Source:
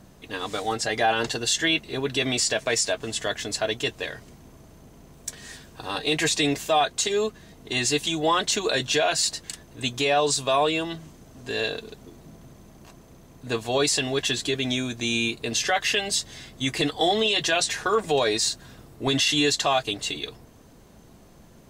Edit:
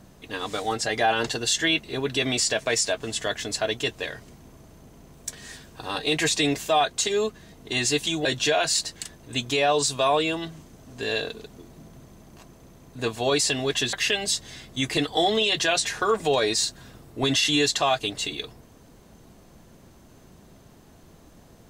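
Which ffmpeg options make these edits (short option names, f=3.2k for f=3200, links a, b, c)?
-filter_complex "[0:a]asplit=3[a][b][c];[a]atrim=end=8.252[d];[b]atrim=start=8.728:end=14.412[e];[c]atrim=start=15.768[f];[d][e]acrossfade=d=0.004:c1=hsin:c2=hsin[g];[g][f]acrossfade=d=0.004:c1=hsin:c2=hsin"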